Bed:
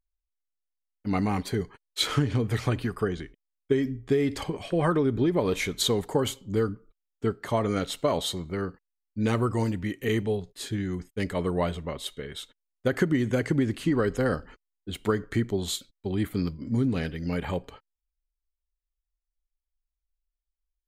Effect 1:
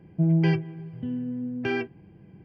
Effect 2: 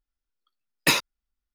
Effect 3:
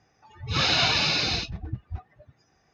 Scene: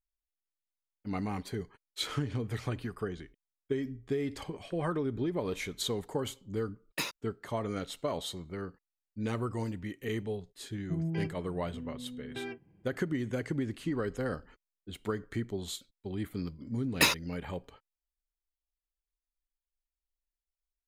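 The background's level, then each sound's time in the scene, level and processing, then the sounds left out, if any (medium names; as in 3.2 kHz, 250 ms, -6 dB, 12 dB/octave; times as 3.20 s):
bed -8.5 dB
6.11 s: add 2 -14 dB
10.71 s: add 1 -12.5 dB
16.14 s: add 2 -4 dB
not used: 3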